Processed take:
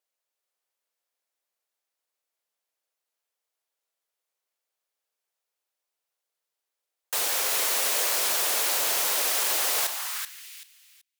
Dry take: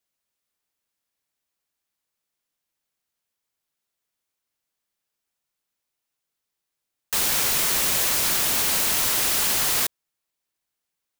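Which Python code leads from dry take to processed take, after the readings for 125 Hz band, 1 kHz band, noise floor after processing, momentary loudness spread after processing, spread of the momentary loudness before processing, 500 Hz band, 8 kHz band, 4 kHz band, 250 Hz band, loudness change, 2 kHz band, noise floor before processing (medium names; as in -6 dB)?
under -20 dB, -1.0 dB, under -85 dBFS, 10 LU, 4 LU, 0.0 dB, -3.0 dB, -3.0 dB, -11.0 dB, -4.0 dB, -2.5 dB, -83 dBFS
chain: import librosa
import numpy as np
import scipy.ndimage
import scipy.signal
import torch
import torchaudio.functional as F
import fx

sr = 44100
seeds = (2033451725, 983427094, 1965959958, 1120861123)

y = fx.vibrato(x, sr, rate_hz=1.1, depth_cents=6.2)
y = fx.echo_feedback(y, sr, ms=382, feedback_pct=25, wet_db=-6.5)
y = fx.filter_sweep_highpass(y, sr, from_hz=510.0, to_hz=2400.0, start_s=9.75, end_s=10.46, q=1.6)
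y = y * 10.0 ** (-4.0 / 20.0)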